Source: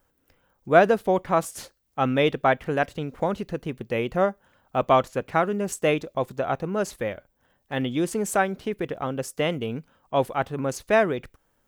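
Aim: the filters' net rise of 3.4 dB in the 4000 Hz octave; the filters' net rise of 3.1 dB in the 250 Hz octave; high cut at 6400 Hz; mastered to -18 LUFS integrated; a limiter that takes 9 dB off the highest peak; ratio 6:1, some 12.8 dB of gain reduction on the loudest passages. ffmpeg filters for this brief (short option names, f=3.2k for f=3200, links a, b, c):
-af "lowpass=6.4k,equalizer=f=250:t=o:g=4,equalizer=f=4k:t=o:g=5,acompressor=threshold=-24dB:ratio=6,volume=15dB,alimiter=limit=-6.5dB:level=0:latency=1"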